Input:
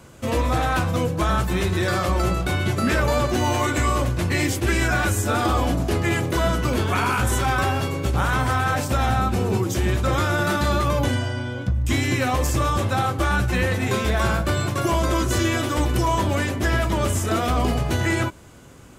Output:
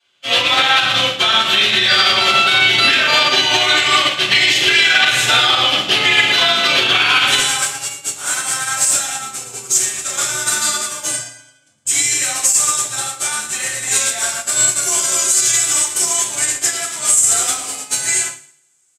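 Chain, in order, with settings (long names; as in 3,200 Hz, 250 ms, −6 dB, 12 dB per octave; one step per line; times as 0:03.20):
frequency shifter +23 Hz
resonant band-pass 3,300 Hz, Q 3.9, from 0:07.39 7,900 Hz
repeating echo 111 ms, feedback 56%, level −10 dB
convolution reverb RT60 0.55 s, pre-delay 3 ms, DRR −12 dB
boost into a limiter +19 dB
expander for the loud parts 2.5 to 1, over −28 dBFS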